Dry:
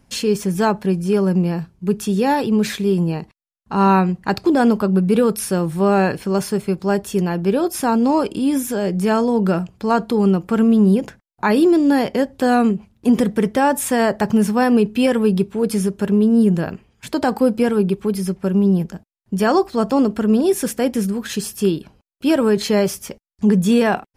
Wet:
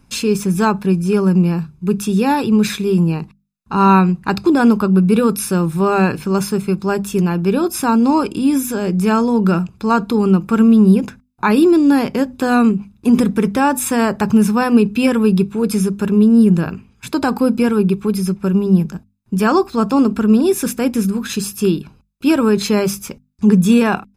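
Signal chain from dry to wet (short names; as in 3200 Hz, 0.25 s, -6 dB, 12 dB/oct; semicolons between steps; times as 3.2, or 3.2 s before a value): notches 50/100/150/200/250 Hz; comb 0.8 ms, depth 50%; gain +2 dB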